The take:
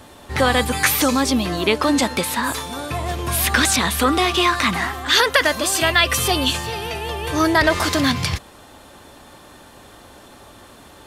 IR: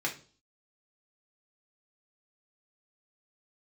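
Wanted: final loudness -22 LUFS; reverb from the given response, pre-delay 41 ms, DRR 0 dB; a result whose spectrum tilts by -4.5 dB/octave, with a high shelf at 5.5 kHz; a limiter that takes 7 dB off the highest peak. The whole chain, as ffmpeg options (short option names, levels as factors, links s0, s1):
-filter_complex "[0:a]highshelf=f=5500:g=-6.5,alimiter=limit=0.316:level=0:latency=1,asplit=2[s0][s1];[1:a]atrim=start_sample=2205,adelay=41[s2];[s1][s2]afir=irnorm=-1:irlink=0,volume=0.501[s3];[s0][s3]amix=inputs=2:normalize=0,volume=0.668"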